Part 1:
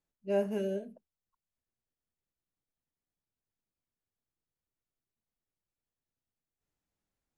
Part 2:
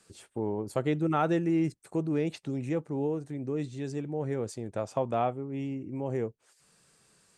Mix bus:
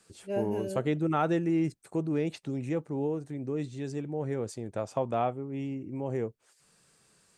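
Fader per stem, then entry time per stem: −2.5, −0.5 decibels; 0.00, 0.00 seconds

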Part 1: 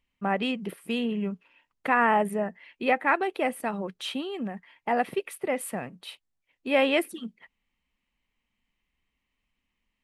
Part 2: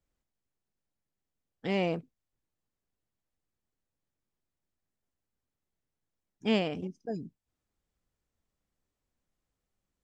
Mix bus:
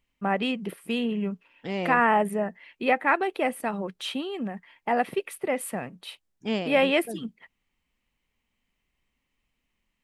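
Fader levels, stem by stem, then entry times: +1.0, −1.0 decibels; 0.00, 0.00 seconds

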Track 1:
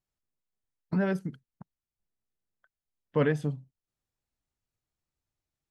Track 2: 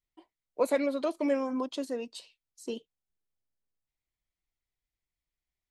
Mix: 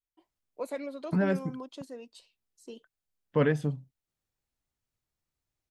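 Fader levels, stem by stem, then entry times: +0.5, −9.0 decibels; 0.20, 0.00 seconds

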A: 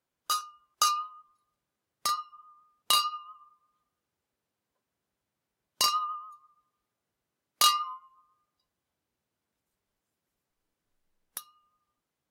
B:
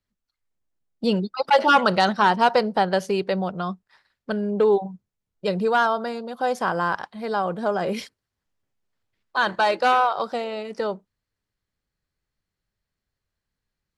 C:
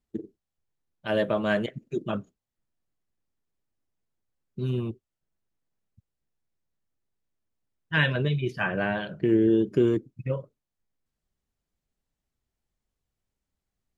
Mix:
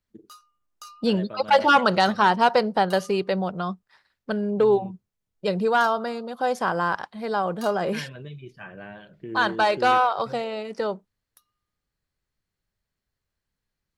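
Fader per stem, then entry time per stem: −19.0, −0.5, −13.5 decibels; 0.00, 0.00, 0.00 seconds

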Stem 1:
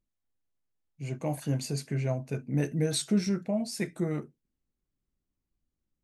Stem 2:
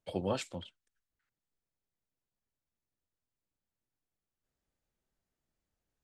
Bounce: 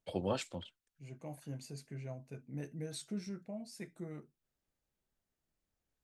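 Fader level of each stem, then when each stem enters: −14.5, −1.5 decibels; 0.00, 0.00 seconds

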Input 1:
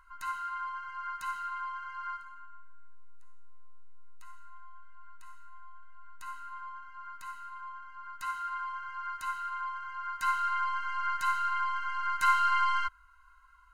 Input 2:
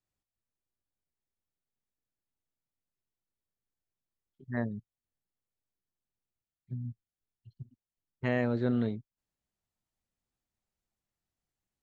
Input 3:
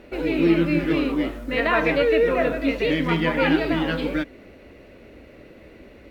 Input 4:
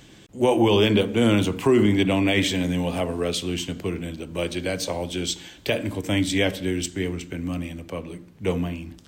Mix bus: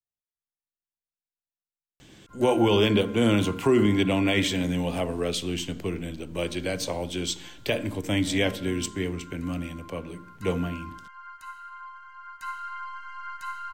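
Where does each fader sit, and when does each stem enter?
−6.0 dB, −14.5 dB, muted, −2.5 dB; 2.20 s, 0.00 s, muted, 2.00 s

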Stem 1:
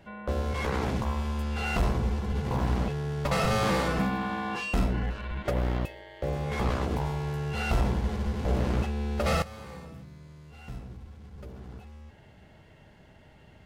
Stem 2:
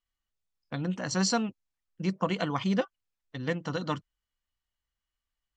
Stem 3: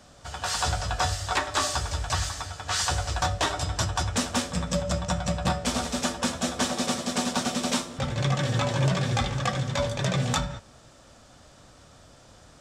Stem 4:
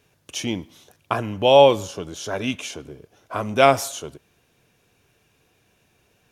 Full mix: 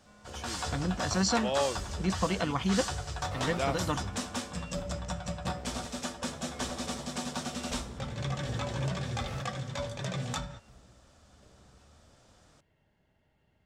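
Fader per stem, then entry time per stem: −17.0, −1.0, −9.0, −17.5 decibels; 0.00, 0.00, 0.00, 0.00 seconds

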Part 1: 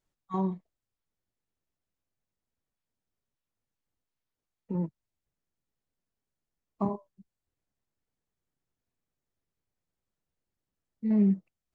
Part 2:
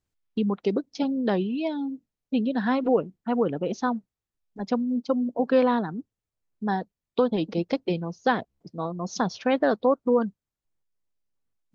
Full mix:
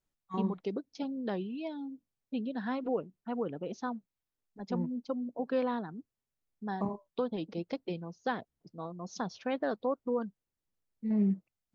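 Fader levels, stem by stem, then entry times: −4.5, −10.5 decibels; 0.00, 0.00 seconds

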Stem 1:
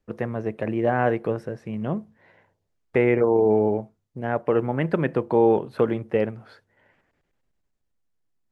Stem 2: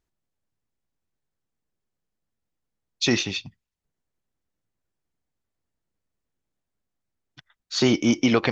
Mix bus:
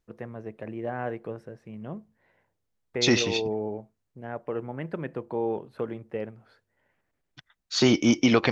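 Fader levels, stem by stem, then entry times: −10.5, −0.5 decibels; 0.00, 0.00 seconds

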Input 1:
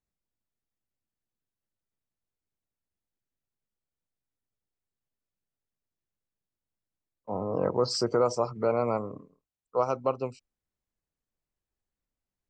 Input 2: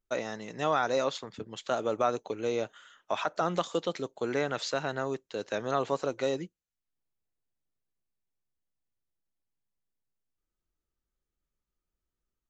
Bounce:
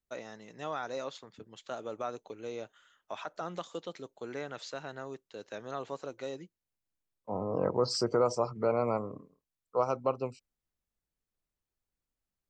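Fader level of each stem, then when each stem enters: −2.5, −9.5 decibels; 0.00, 0.00 seconds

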